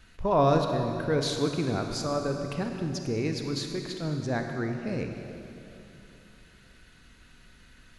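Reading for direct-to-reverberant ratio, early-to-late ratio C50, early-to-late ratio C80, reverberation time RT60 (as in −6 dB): 4.0 dB, 4.5 dB, 5.5 dB, 3.0 s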